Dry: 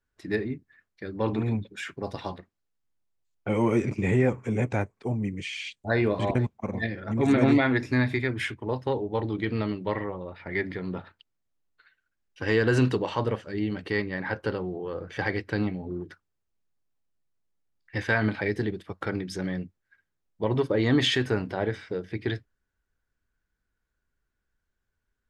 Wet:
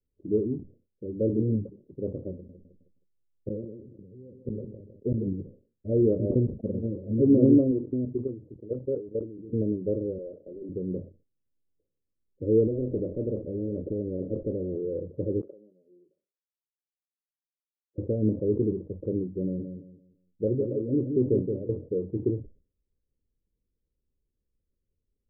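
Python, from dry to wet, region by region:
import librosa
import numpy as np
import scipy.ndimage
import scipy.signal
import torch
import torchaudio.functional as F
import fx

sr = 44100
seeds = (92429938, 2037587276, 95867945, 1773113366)

y = fx.chain(x, sr, fx.gate_flip(shuts_db=-19.0, range_db=-26),
    fx.echo_feedback(ms=157, feedback_pct=39, wet_db=-12.5),
    fx.sustainer(db_per_s=43.0), at=(2.33, 5.33))
y = fx.chain(y, sr, fx.lowpass(hz=1600.0, slope=6),
    fx.low_shelf(hz=120.0, db=-11.5),
    fx.level_steps(step_db=14), at=(7.71, 9.53))
y = fx.chain(y, sr, fx.highpass(hz=430.0, slope=12),
    fx.clip_hard(threshold_db=-34.5),
    fx.env_flatten(amount_pct=70), at=(10.18, 10.69))
y = fx.chain(y, sr, fx.low_shelf(hz=340.0, db=5.0),
    fx.spectral_comp(ratio=4.0), at=(12.67, 14.76))
y = fx.chain(y, sr, fx.highpass(hz=1500.0, slope=12),
    fx.comb(ms=5.3, depth=0.39), at=(15.41, 17.98))
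y = fx.chain(y, sr, fx.tremolo(hz=1.1, depth=0.73),
    fx.echo_feedback(ms=171, feedback_pct=28, wet_db=-6), at=(19.42, 21.69))
y = fx.dynamic_eq(y, sr, hz=370.0, q=1.3, threshold_db=-37.0, ratio=4.0, max_db=4)
y = scipy.signal.sosfilt(scipy.signal.butter(16, 570.0, 'lowpass', fs=sr, output='sos'), y)
y = fx.sustainer(y, sr, db_per_s=150.0)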